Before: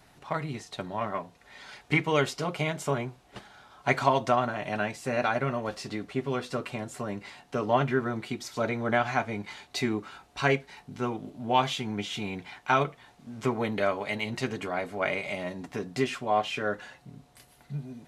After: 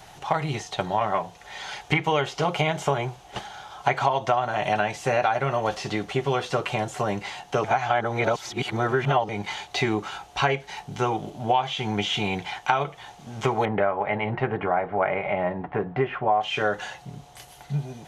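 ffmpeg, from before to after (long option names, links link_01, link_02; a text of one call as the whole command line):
ffmpeg -i in.wav -filter_complex "[0:a]asettb=1/sr,asplit=3[link_01][link_02][link_03];[link_01]atrim=end=13.654[link_04];[link_02]atrim=start=13.65:end=16.41,asetpts=PTS-STARTPTS,afade=type=in:duration=0.004:curve=qsin,afade=type=out:start_time=2.756:duration=0.004:curve=qsin,lowpass=frequency=1900:width=0.5412,lowpass=frequency=1900:width=1.3066[link_05];[link_03]atrim=start=16.406[link_06];[link_04][link_05]acrossfade=duration=0.004:curve1=hsin:curve2=qsin[link_07];[link_07][link_06]acrossfade=duration=0.004:curve1=qsin:curve2=hsin,asplit=3[link_08][link_09][link_10];[link_08]atrim=end=7.642[link_11];[link_09]atrim=start=7.638:end=9.292,asetpts=PTS-STARTPTS,areverse[link_12];[link_10]atrim=start=9.288[link_13];[link_11][link_12]acrossfade=duration=0.004:curve1=hsin:curve2=hsin[link_14];[link_14][link_13]acrossfade=duration=0.004:curve1=hsin:curve2=hsin,acrossover=split=3500[link_15][link_16];[link_16]acompressor=threshold=-51dB:ratio=4:attack=1:release=60[link_17];[link_15][link_17]amix=inputs=2:normalize=0,equalizer=frequency=250:width_type=o:width=0.33:gain=-12,equalizer=frequency=800:width_type=o:width=0.33:gain=9,equalizer=frequency=3150:width_type=o:width=0.33:gain=6,equalizer=frequency=6300:width_type=o:width=0.33:gain=7,acompressor=threshold=-28dB:ratio=6,volume=9dB" out.wav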